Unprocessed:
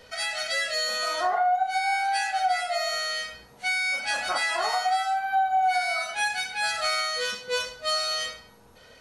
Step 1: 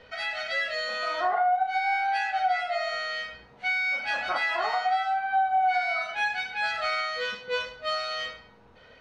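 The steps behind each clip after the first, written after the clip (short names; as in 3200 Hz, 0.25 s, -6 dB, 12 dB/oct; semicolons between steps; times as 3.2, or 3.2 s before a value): Chebyshev low-pass 2700 Hz, order 2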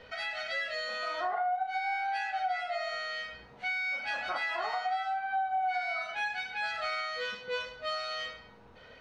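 compressor 1.5:1, threshold -41 dBFS, peak gain reduction 7.5 dB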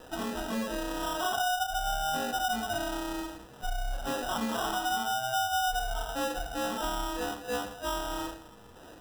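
in parallel at -7 dB: hard clip -35.5 dBFS, distortion -8 dB; on the sum: sample-and-hold 20×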